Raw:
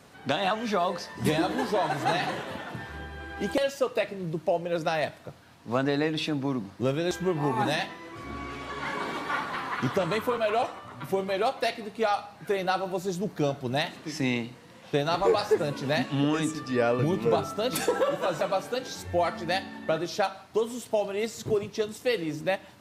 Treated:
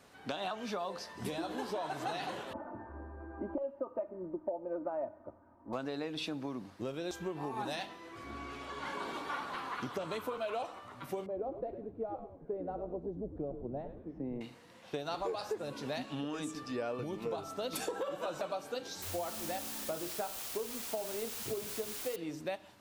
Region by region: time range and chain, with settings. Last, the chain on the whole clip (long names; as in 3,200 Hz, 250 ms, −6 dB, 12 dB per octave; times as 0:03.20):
0:02.53–0:05.73: low-pass filter 1,100 Hz 24 dB per octave + comb filter 3.3 ms, depth 78%
0:11.26–0:14.41: Chebyshev band-pass filter 130–550 Hz + echo with shifted repeats 102 ms, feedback 51%, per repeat −120 Hz, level −10 dB
0:19.02–0:22.16: low-pass filter 1,200 Hz 6 dB per octave + mains-hum notches 60/120/180/240/300/360/420/480/540/600 Hz + bit-depth reduction 6 bits, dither triangular
whole clip: dynamic equaliser 1,900 Hz, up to −6 dB, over −48 dBFS, Q 3.3; downward compressor, threshold −27 dBFS; parametric band 140 Hz −6 dB 1.2 octaves; level −6 dB